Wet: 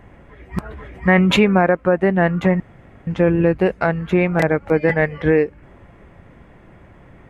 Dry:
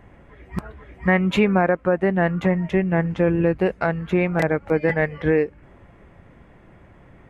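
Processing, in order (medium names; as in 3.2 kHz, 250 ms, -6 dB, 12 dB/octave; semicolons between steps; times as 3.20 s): 0.66–1.39 s: decay stretcher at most 20 dB/s; 2.60–3.07 s: room tone; trim +3.5 dB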